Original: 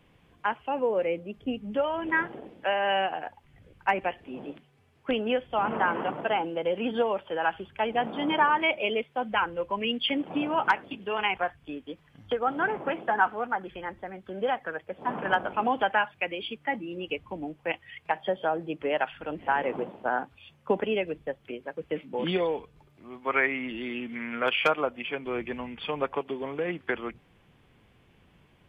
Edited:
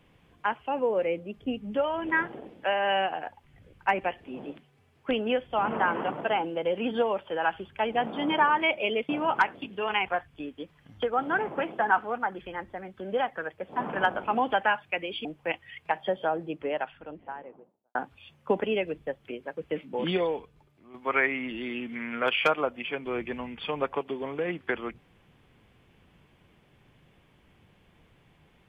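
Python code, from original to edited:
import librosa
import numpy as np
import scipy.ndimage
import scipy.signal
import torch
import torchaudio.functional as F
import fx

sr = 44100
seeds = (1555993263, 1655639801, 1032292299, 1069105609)

y = fx.studio_fade_out(x, sr, start_s=18.32, length_s=1.83)
y = fx.edit(y, sr, fx.cut(start_s=9.09, length_s=1.29),
    fx.cut(start_s=16.54, length_s=0.91),
    fx.fade_out_to(start_s=22.43, length_s=0.71, floor_db=-8.5), tone=tone)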